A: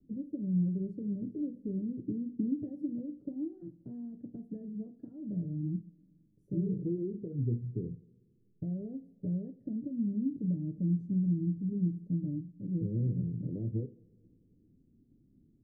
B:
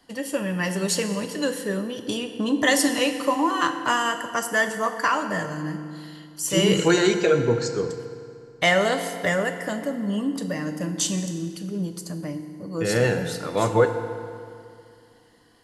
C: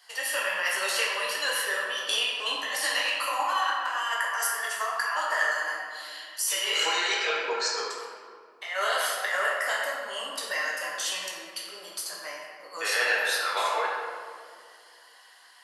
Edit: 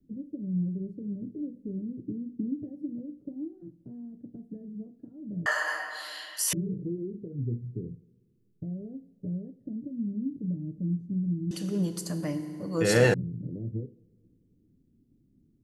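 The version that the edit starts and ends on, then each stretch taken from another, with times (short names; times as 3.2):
A
5.46–6.53 from C
11.51–13.14 from B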